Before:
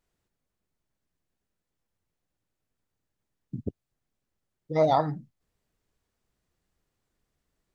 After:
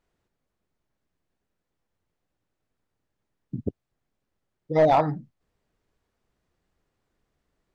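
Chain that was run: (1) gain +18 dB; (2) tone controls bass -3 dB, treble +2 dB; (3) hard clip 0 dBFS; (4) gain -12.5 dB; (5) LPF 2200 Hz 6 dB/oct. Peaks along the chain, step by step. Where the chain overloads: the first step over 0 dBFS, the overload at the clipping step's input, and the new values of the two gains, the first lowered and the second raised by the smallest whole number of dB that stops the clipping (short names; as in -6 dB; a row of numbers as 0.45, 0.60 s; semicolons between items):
+7.5, +7.0, 0.0, -12.5, -12.5 dBFS; step 1, 7.0 dB; step 1 +11 dB, step 4 -5.5 dB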